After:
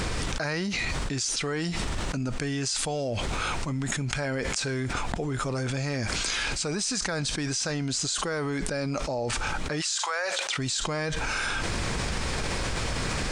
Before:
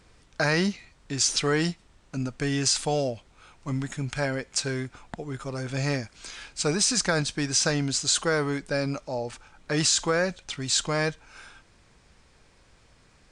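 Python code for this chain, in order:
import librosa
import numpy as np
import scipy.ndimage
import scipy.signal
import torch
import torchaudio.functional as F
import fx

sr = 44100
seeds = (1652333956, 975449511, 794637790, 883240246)

y = fx.highpass(x, sr, hz=fx.line((9.8, 1100.0), (10.57, 380.0)), slope=24, at=(9.8, 10.57), fade=0.02)
y = fx.env_flatten(y, sr, amount_pct=100)
y = y * 10.0 ** (-8.0 / 20.0)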